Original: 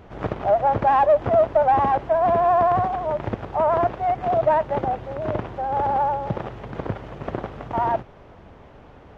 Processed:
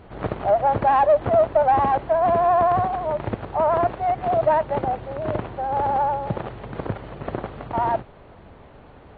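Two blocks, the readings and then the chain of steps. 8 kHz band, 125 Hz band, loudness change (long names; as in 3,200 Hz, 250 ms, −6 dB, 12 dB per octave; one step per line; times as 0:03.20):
can't be measured, 0.0 dB, 0.0 dB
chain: AC-3 32 kbit/s 32,000 Hz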